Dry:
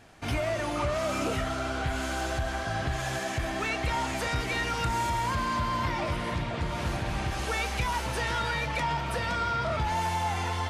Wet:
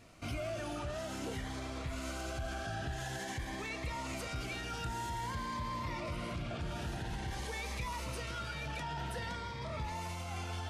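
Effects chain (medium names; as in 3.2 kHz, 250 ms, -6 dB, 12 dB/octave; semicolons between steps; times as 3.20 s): peak limiter -28 dBFS, peak gain reduction 8 dB; Shepard-style phaser rising 0.5 Hz; trim -2.5 dB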